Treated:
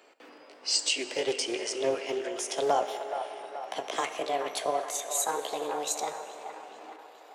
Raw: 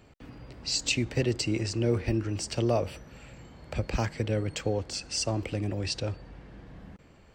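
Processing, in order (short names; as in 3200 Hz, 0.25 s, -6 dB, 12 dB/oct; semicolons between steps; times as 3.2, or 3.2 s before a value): gliding pitch shift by +8.5 st starting unshifted; HPF 390 Hz 24 dB/oct; band-limited delay 0.425 s, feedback 56%, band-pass 1200 Hz, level -7 dB; plate-style reverb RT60 3.2 s, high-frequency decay 0.55×, pre-delay 0 ms, DRR 9.5 dB; Doppler distortion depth 0.13 ms; gain +3 dB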